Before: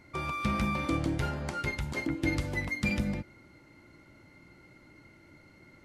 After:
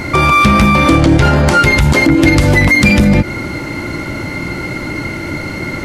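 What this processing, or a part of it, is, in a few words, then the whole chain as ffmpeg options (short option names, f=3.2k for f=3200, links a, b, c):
loud club master: -filter_complex "[0:a]acompressor=threshold=-39dB:ratio=1.5,asoftclip=type=hard:threshold=-27.5dB,alimiter=level_in=36dB:limit=-1dB:release=50:level=0:latency=1,asettb=1/sr,asplit=3[a][b][c];[a]atrim=end=1.024[d];[b]atrim=start=1.02:end=1.46,asetpts=PTS-STARTPTS,afade=t=in:d=0.004:c=qsin,afade=t=out:st=0.436:d=0.004:c=qsin,acrossover=split=8200[e][f];[f]acompressor=threshold=-42dB:ratio=4:attack=1:release=60[g];[e][g]amix=inputs=2:normalize=0[h];[c]atrim=start=1.456[i];[d][h]acrossfade=d=0.004:c1=hsin:c2=qsin[j];[j][i]acrossfade=d=0.004:c1=qsin:c2=hsin,volume=-1dB"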